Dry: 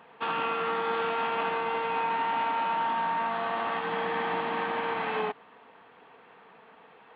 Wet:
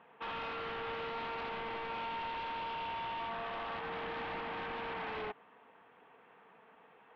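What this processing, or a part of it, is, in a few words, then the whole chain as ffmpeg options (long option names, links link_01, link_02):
synthesiser wavefolder: -af "aeval=exprs='0.0398*(abs(mod(val(0)/0.0398+3,4)-2)-1)':channel_layout=same,lowpass=frequency=3400:width=0.5412,lowpass=frequency=3400:width=1.3066,volume=-7dB"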